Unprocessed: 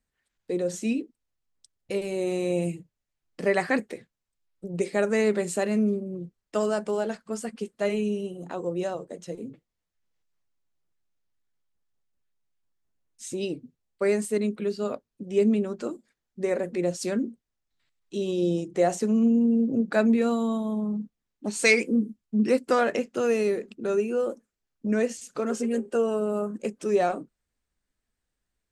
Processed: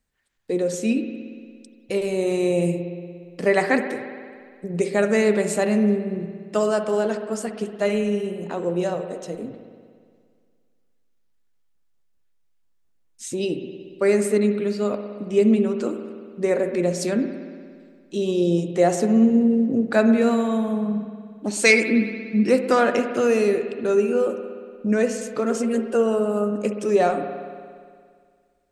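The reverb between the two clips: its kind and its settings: spring tank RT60 2 s, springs 58 ms, chirp 45 ms, DRR 7.5 dB; trim +4.5 dB

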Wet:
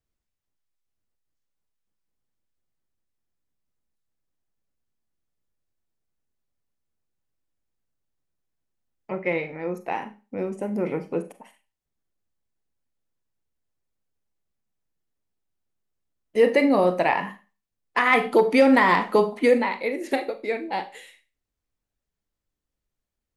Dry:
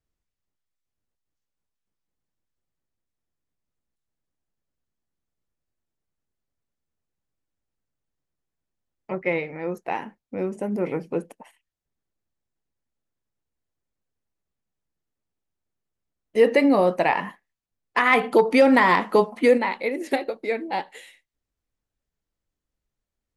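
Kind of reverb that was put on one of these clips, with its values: Schroeder reverb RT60 0.31 s, combs from 30 ms, DRR 10.5 dB; trim -1 dB

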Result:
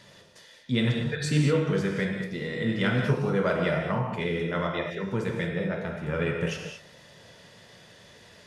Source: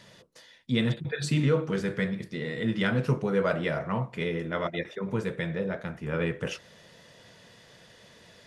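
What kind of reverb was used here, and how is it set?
gated-style reverb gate 250 ms flat, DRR 1.5 dB

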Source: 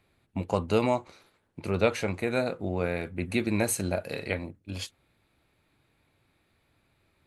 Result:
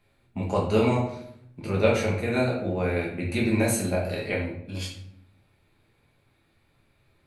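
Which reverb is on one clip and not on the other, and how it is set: simulated room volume 120 m³, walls mixed, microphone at 1.3 m; trim -2.5 dB

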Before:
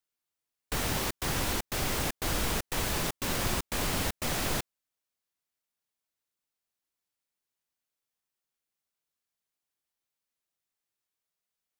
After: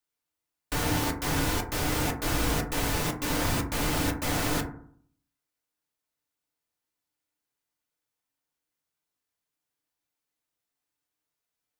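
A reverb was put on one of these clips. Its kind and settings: FDN reverb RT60 0.57 s, low-frequency decay 1.25×, high-frequency decay 0.3×, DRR 0.5 dB

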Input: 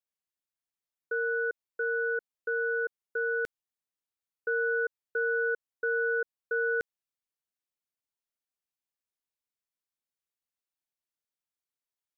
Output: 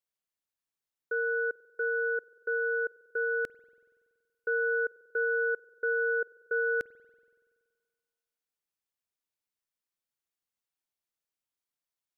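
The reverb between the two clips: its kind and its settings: spring tank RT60 1.8 s, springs 47 ms, chirp 60 ms, DRR 18.5 dB

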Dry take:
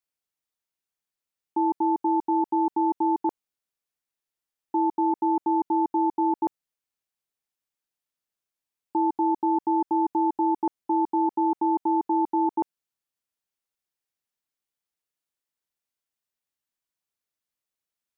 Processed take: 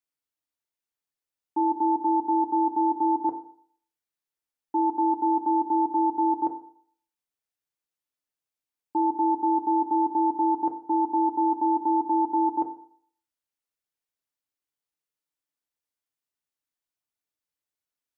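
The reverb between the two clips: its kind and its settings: FDN reverb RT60 0.59 s, low-frequency decay 0.9×, high-frequency decay 0.4×, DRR 6 dB; trim -3.5 dB

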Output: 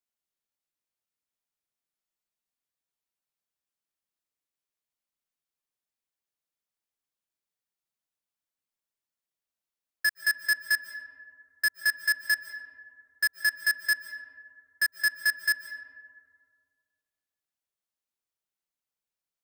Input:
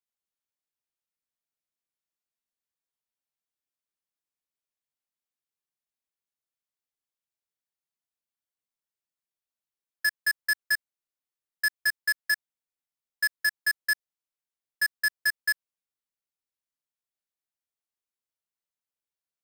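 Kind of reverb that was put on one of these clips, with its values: algorithmic reverb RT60 2.2 s, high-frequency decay 0.35×, pre-delay 105 ms, DRR 9.5 dB

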